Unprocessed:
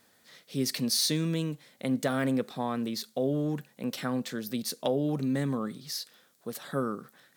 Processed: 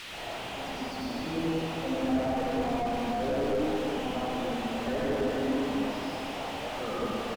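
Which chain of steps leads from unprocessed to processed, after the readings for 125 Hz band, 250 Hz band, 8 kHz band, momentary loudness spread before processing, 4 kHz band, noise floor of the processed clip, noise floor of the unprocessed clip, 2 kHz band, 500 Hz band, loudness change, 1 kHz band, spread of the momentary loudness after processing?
−6.0 dB, −0.5 dB, −11.0 dB, 10 LU, −3.5 dB, −38 dBFS, −65 dBFS, +3.5 dB, +3.0 dB, −0.5 dB, +6.5 dB, 6 LU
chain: spectral dynamics exaggerated over time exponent 2
high-pass filter 170 Hz 24 dB per octave
high-shelf EQ 7,200 Hz −10 dB
mains-hum notches 50/100/150/200/250 Hz
comb filter 4.1 ms, depth 41%
dynamic equaliser 1,500 Hz, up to −6 dB, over −52 dBFS, Q 1.2
in parallel at +1 dB: downward compressor 5 to 1, threshold −40 dBFS, peak gain reduction 14 dB
on the sum: bit-depth reduction 6 bits, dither triangular
auto-filter band-pass square 3.6 Hz 740–2,900 Hz
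sine wavefolder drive 12 dB, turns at −20.5 dBFS
comb and all-pass reverb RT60 3.1 s, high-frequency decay 0.8×, pre-delay 50 ms, DRR −10 dB
slew-rate limiting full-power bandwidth 50 Hz
level −5.5 dB

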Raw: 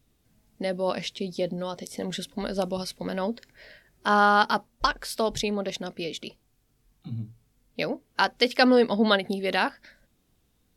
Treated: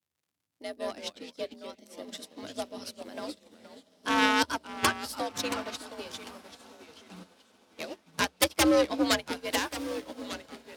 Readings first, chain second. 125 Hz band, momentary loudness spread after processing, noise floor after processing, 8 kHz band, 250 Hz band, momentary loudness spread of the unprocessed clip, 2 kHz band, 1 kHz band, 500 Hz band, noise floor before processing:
−11.0 dB, 20 LU, −83 dBFS, +5.5 dB, −4.0 dB, 16 LU, −4.0 dB, −7.0 dB, −6.0 dB, −69 dBFS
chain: stylus tracing distortion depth 0.022 ms
high-shelf EQ 3,100 Hz +8.5 dB
surface crackle 75 per second −35 dBFS
harmonic generator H 3 −7 dB, 6 −24 dB, 7 −20 dB, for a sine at −1.5 dBFS
frequency shifter +65 Hz
tape wow and flutter 26 cents
on a send: feedback delay with all-pass diffusion 1,334 ms, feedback 53%, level −10.5 dB
on the sum: delay with pitch and tempo change per echo 82 ms, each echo −2 semitones, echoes 3, each echo −6 dB
expander for the loud parts 2.5 to 1, over −38 dBFS

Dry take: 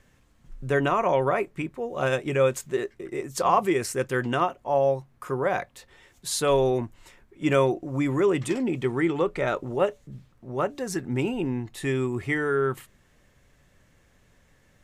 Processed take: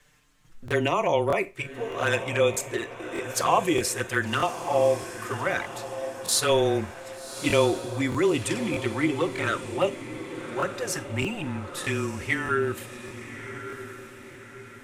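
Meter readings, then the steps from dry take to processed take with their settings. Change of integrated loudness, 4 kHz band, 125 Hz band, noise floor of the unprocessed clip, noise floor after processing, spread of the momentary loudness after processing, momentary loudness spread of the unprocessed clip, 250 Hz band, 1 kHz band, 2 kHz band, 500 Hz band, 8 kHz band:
−0.5 dB, +6.0 dB, −1.5 dB, −62 dBFS, −46 dBFS, 15 LU, 10 LU, −1.5 dB, −1.0 dB, +3.0 dB, −1.0 dB, +5.5 dB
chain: frequency shifter −19 Hz
flanger swept by the level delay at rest 6.9 ms, full sweep at −18.5 dBFS
tilt shelving filter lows −5 dB
on a send: feedback delay with all-pass diffusion 1,163 ms, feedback 47%, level −11 dB
on the sum: four-comb reverb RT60 0.3 s, combs from 32 ms, DRR 17 dB
regular buffer underruns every 0.62 s, samples 1,024, repeat, from 0:00.66
level +3.5 dB

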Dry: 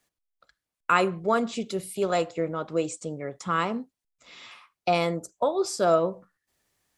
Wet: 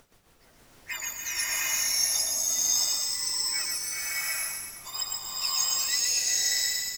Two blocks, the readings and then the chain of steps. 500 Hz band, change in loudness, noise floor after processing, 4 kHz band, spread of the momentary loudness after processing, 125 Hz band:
−26.0 dB, +1.5 dB, −59 dBFS, +12.5 dB, 9 LU, below −15 dB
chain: frequency axis turned over on the octave scale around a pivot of 1,600 Hz
high-pass filter 1,000 Hz 12 dB per octave
high shelf with overshoot 4,800 Hz +6.5 dB, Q 3
upward compression, threshold −44 dBFS
soft clipping −10.5 dBFS, distortion −26 dB
phase shifter 0.96 Hz, delay 1.6 ms, feedback 59%
background noise pink −53 dBFS
amplitude tremolo 6.4 Hz, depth 65%
single-tap delay 123 ms −4 dB
slow-attack reverb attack 700 ms, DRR −7 dB
level −8 dB

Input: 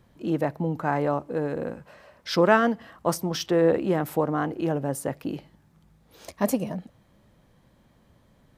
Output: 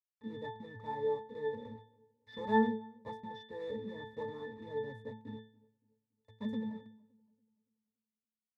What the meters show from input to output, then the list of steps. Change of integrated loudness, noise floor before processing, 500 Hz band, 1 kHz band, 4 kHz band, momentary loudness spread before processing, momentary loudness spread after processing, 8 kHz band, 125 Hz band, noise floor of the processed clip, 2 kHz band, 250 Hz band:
−13.0 dB, −61 dBFS, −13.0 dB, −11.0 dB, −16.5 dB, 13 LU, 16 LU, below −35 dB, −18.5 dB, below −85 dBFS, −14.0 dB, −12.5 dB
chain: one scale factor per block 3 bits
low-shelf EQ 69 Hz +4 dB
bit reduction 6 bits
resonances in every octave A, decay 0.41 s
on a send: feedback echo with a low-pass in the loop 283 ms, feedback 39%, low-pass 1,300 Hz, level −24 dB
on the sum: level +2 dB

